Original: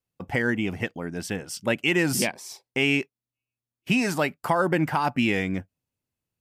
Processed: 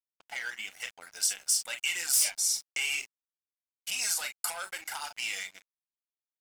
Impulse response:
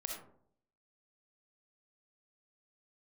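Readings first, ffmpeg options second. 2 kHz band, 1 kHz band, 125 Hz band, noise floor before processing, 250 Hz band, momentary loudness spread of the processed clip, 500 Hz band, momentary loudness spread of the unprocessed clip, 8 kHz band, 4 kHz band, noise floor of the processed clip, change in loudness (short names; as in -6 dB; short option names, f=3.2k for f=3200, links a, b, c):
-8.0 dB, -15.0 dB, under -35 dB, under -85 dBFS, under -35 dB, 16 LU, -24.5 dB, 10 LU, +8.0 dB, 0.0 dB, under -85 dBFS, -4.5 dB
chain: -filter_complex "[0:a]acrossover=split=4700[a][b];[b]dynaudnorm=f=230:g=5:m=11.5dB[c];[a][c]amix=inputs=2:normalize=0,lowpass=f=12k:w=0.5412,lowpass=f=12k:w=1.3066,aecho=1:1:1.4:0.47,asplit=2[d][e];[e]aecho=0:1:31|41:0.266|0.282[f];[d][f]amix=inputs=2:normalize=0,asoftclip=type=tanh:threshold=-17.5dB,acompressor=threshold=-30dB:ratio=4,highpass=1k,afftfilt=real='re*gte(hypot(re,im),0.00178)':imag='im*gte(hypot(re,im),0.00178)':win_size=1024:overlap=0.75,highshelf=f=2.6k:g=11.5,flanger=delay=0.1:depth=6.4:regen=-25:speed=0.99:shape=triangular,aeval=exprs='sgn(val(0))*max(abs(val(0))-0.00422,0)':c=same"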